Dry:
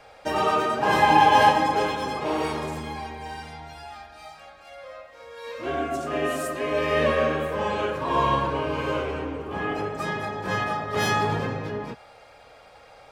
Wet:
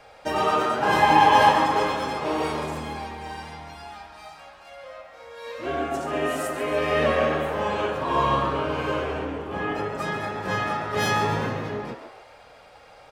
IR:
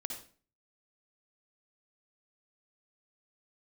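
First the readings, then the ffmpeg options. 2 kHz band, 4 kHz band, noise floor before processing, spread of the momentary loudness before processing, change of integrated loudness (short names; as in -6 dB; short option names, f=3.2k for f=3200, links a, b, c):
+0.5 dB, +0.5 dB, -50 dBFS, 22 LU, +0.5 dB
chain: -filter_complex "[0:a]asplit=6[a][b][c][d][e][f];[b]adelay=138,afreqshift=120,volume=-11dB[g];[c]adelay=276,afreqshift=240,volume=-17dB[h];[d]adelay=414,afreqshift=360,volume=-23dB[i];[e]adelay=552,afreqshift=480,volume=-29.1dB[j];[f]adelay=690,afreqshift=600,volume=-35.1dB[k];[a][g][h][i][j][k]amix=inputs=6:normalize=0"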